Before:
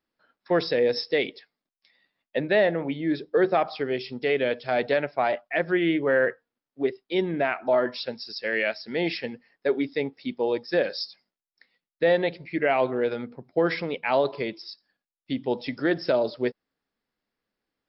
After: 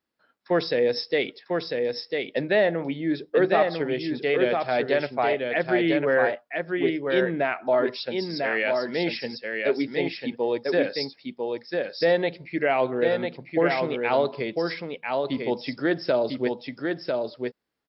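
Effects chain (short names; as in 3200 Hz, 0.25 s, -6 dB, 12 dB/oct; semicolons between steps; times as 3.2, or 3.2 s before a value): HPF 42 Hz; echo 0.998 s -4 dB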